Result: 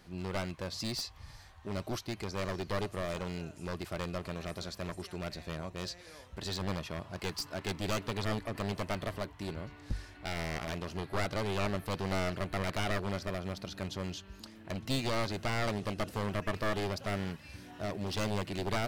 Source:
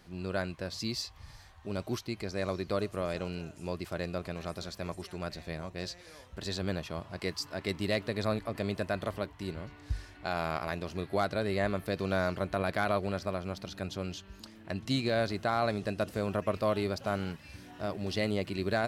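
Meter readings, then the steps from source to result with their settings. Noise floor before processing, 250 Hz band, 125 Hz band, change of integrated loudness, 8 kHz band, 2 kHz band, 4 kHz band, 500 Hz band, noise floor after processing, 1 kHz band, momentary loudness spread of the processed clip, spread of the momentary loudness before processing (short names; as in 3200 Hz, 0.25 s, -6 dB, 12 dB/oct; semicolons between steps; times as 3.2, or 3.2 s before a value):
-53 dBFS, -2.5 dB, -0.5 dB, -2.5 dB, +2.5 dB, -2.0 dB, 0.0 dB, -4.5 dB, -53 dBFS, -2.5 dB, 8 LU, 10 LU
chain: one-sided fold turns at -31 dBFS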